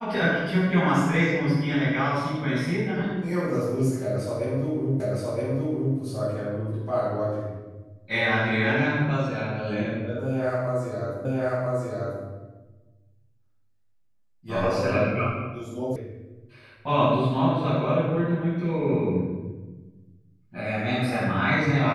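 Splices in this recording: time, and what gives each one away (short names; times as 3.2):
5 repeat of the last 0.97 s
11.25 repeat of the last 0.99 s
15.96 sound cut off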